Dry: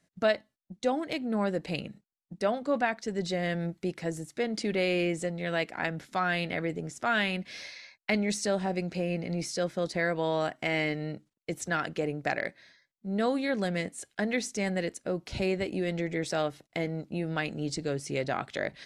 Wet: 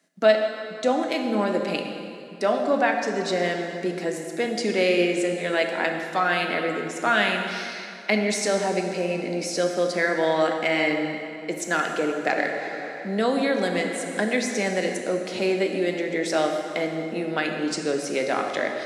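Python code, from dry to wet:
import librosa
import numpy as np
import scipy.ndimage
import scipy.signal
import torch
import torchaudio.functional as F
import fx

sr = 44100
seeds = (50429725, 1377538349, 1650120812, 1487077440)

y = scipy.signal.sosfilt(scipy.signal.butter(4, 220.0, 'highpass', fs=sr, output='sos'), x)
y = fx.rev_plate(y, sr, seeds[0], rt60_s=2.7, hf_ratio=0.75, predelay_ms=0, drr_db=3.0)
y = fx.band_squash(y, sr, depth_pct=40, at=(12.38, 15.01))
y = y * librosa.db_to_amplitude(5.5)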